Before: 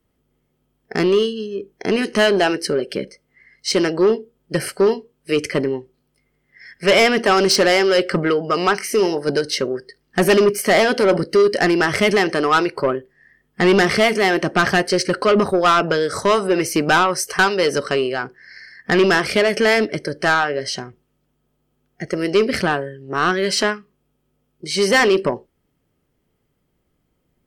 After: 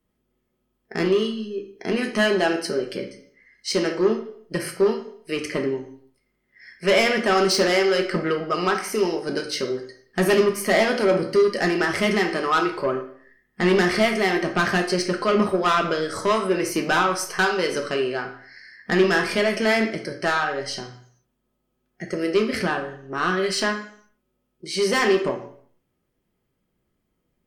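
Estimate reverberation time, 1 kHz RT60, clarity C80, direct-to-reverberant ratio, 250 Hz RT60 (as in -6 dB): 0.60 s, 0.55 s, 12.0 dB, 2.0 dB, 0.65 s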